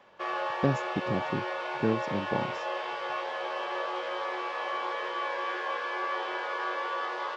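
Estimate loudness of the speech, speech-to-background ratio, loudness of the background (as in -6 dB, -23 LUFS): -33.0 LUFS, 0.0 dB, -33.0 LUFS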